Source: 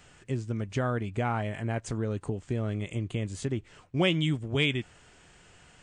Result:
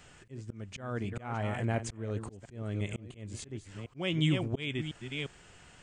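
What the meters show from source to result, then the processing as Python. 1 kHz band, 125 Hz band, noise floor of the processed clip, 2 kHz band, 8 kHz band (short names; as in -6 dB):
-6.0 dB, -4.0 dB, -57 dBFS, -5.5 dB, -1.5 dB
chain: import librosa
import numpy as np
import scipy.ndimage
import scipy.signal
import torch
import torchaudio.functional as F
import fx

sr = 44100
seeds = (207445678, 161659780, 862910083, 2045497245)

y = fx.reverse_delay(x, sr, ms=351, wet_db=-11.0)
y = fx.auto_swell(y, sr, attack_ms=324.0)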